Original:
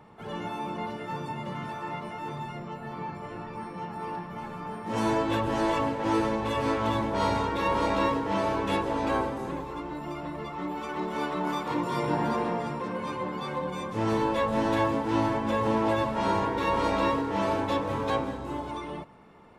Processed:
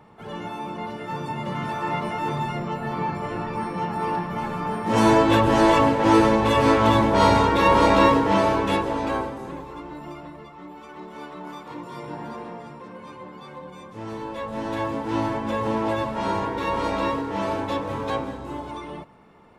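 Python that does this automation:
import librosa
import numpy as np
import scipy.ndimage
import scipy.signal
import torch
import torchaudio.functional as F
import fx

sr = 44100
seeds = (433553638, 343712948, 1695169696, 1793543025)

y = fx.gain(x, sr, db=fx.line((0.79, 1.5), (2.0, 9.5), (8.21, 9.5), (9.4, -1.0), (10.08, -1.0), (10.54, -7.5), (14.17, -7.5), (15.13, 1.0)))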